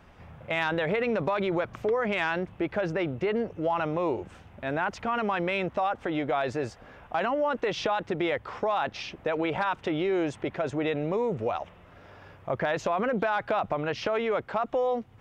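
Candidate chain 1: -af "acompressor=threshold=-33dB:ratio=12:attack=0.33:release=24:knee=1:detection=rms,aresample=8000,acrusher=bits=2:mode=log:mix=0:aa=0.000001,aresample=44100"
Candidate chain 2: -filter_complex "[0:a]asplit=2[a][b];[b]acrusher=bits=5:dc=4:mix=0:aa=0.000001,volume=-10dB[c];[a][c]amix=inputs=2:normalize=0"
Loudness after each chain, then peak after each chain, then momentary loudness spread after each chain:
-38.5, -26.5 LUFS; -28.5, -14.0 dBFS; 5, 6 LU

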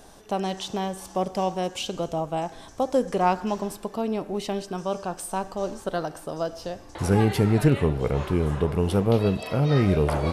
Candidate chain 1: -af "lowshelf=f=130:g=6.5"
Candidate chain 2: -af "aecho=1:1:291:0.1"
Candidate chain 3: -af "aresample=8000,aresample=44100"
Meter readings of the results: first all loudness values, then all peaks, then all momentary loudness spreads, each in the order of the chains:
-24.0, -25.5, -26.0 LUFS; -5.5, -7.5, -7.5 dBFS; 12, 10, 11 LU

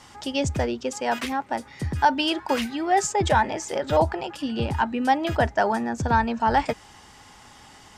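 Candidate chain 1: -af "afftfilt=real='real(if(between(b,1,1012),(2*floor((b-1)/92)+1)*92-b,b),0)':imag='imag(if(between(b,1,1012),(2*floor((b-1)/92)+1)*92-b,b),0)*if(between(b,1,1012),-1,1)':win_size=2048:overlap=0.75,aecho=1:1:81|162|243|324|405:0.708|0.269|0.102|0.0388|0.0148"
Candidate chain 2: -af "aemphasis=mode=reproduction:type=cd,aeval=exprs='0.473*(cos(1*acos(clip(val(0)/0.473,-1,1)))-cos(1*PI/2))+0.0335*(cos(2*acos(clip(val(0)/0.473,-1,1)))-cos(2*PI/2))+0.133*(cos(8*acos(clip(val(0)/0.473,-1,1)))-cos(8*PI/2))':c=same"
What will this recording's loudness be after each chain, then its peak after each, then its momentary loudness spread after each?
-21.0, -22.0 LUFS; -6.0, -4.0 dBFS; 7, 7 LU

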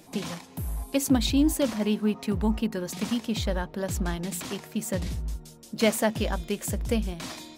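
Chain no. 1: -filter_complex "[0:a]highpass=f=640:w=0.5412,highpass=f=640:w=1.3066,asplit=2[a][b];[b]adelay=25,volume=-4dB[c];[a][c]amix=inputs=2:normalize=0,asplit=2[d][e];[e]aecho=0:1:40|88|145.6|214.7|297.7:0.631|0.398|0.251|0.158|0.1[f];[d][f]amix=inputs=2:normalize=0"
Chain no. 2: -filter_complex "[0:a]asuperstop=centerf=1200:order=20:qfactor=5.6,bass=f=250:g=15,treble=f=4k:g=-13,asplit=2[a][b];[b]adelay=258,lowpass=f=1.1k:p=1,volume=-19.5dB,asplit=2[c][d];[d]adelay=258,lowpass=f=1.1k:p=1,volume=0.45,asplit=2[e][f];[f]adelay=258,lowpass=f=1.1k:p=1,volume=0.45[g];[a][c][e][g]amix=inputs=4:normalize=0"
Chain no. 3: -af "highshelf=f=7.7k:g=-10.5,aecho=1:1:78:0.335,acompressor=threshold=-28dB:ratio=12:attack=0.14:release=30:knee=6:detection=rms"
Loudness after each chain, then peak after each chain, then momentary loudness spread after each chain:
-31.0, -20.0, -35.5 LUFS; -11.0, -4.0, -26.5 dBFS; 12, 9, 4 LU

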